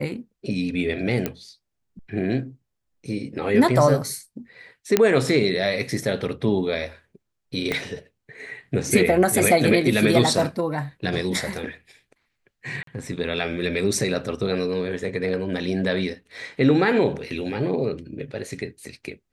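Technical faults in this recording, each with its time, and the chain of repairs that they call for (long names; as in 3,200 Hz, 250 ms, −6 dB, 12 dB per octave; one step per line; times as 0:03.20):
0:01.26: click −10 dBFS
0:04.97: click −2 dBFS
0:07.72: click −11 dBFS
0:12.83–0:12.87: drop-out 43 ms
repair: click removal
repair the gap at 0:12.83, 43 ms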